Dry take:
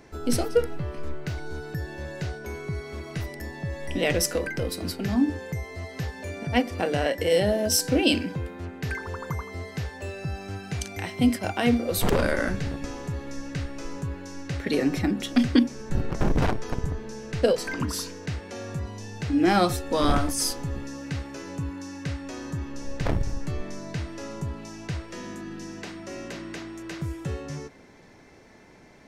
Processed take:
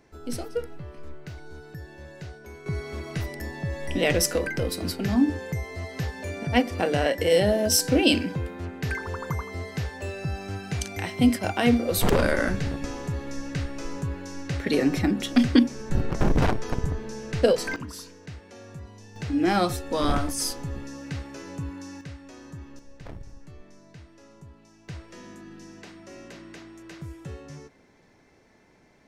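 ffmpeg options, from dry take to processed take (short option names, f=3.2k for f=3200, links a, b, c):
-af "asetnsamples=n=441:p=0,asendcmd='2.66 volume volume 1.5dB;17.76 volume volume -9dB;19.16 volume volume -2dB;22.01 volume volume -9dB;22.79 volume volume -15.5dB;24.88 volume volume -7dB',volume=-8dB"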